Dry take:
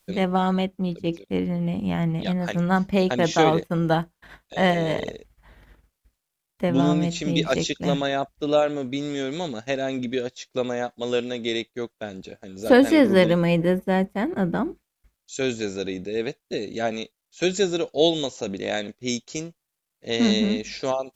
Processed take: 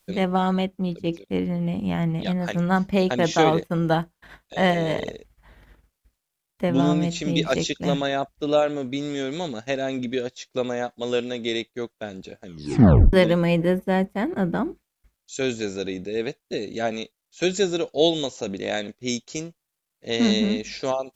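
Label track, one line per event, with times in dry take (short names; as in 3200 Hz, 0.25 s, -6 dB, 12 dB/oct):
12.450000	12.450000	tape stop 0.68 s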